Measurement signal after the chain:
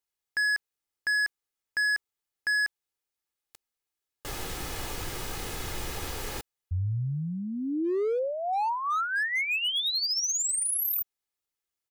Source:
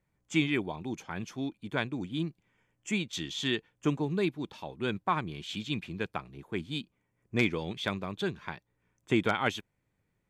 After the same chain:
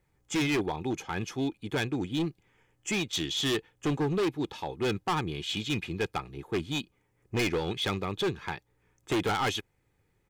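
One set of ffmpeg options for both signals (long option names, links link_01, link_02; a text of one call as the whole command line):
ffmpeg -i in.wav -af "aecho=1:1:2.4:0.41,asoftclip=type=hard:threshold=-30dB,volume=5.5dB" out.wav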